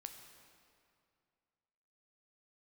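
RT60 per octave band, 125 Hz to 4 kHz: 2.6, 2.4, 2.4, 2.3, 2.1, 1.8 s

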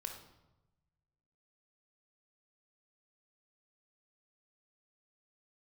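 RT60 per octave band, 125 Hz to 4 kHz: 1.8, 1.3, 1.0, 0.95, 0.75, 0.70 s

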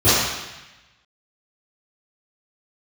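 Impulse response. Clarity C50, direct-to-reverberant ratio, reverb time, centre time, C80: -3.0 dB, -16.5 dB, 1.0 s, 0.102 s, 0.5 dB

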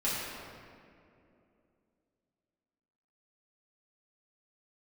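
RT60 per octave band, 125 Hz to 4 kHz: 2.9, 3.4, 3.0, 2.3, 2.0, 1.4 s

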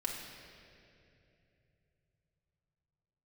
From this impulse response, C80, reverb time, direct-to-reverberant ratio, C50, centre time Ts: 4.0 dB, 2.8 s, -2.0 dB, 2.5 dB, 84 ms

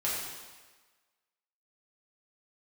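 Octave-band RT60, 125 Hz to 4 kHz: 1.1, 1.2, 1.3, 1.4, 1.3, 1.3 s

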